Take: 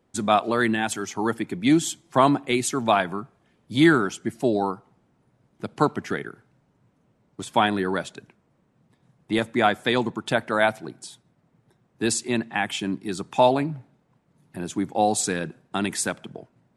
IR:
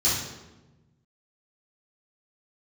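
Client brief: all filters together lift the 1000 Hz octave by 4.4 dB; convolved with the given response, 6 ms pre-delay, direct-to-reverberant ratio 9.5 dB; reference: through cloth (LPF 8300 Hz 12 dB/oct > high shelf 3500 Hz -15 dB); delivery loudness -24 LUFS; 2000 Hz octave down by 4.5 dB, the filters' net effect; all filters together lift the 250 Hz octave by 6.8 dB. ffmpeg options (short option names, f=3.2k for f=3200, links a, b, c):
-filter_complex "[0:a]equalizer=f=250:t=o:g=8.5,equalizer=f=1k:t=o:g=8,equalizer=f=2k:t=o:g=-6,asplit=2[a][b];[1:a]atrim=start_sample=2205,adelay=6[c];[b][c]afir=irnorm=-1:irlink=0,volume=-22dB[d];[a][d]amix=inputs=2:normalize=0,lowpass=8.3k,highshelf=f=3.5k:g=-15,volume=-5.5dB"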